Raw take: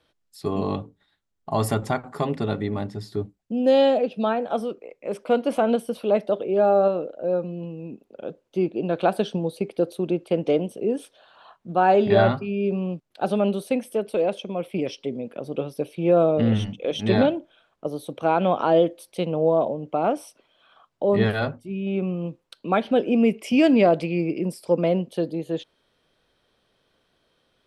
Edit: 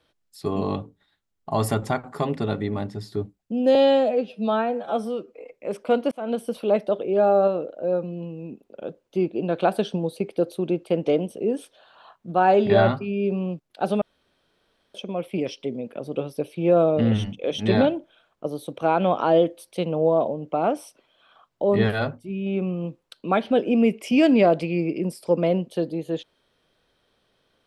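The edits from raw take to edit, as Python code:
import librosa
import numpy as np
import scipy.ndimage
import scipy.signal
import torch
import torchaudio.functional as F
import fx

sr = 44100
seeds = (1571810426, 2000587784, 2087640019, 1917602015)

y = fx.edit(x, sr, fx.stretch_span(start_s=3.75, length_s=1.19, factor=1.5),
    fx.fade_in_span(start_s=5.52, length_s=0.35),
    fx.room_tone_fill(start_s=13.42, length_s=0.93), tone=tone)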